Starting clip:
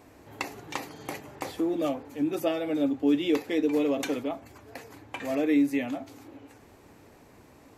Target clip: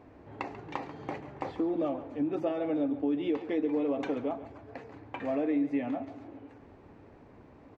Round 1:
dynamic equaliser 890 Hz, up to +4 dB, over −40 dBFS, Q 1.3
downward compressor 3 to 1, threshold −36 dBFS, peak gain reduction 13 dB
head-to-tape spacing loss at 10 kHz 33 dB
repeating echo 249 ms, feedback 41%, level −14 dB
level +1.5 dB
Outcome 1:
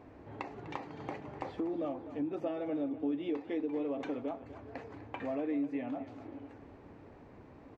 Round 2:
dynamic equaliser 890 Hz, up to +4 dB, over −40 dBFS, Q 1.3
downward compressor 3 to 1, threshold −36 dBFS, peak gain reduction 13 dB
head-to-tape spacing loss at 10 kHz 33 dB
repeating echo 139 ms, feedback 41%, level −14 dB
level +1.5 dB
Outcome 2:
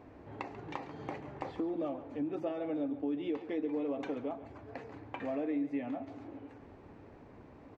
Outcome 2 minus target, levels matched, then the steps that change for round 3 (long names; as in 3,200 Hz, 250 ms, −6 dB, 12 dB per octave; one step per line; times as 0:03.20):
downward compressor: peak gain reduction +5.5 dB
change: downward compressor 3 to 1, threshold −28 dBFS, peak gain reduction 7.5 dB